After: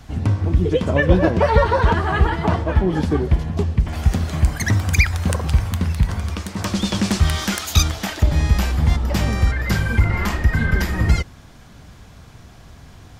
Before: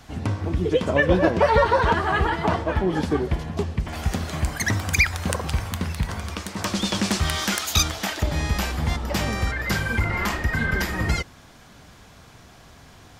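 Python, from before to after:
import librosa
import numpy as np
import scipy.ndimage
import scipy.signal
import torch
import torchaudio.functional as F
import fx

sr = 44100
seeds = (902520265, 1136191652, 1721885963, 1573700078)

y = fx.low_shelf(x, sr, hz=190.0, db=10.0)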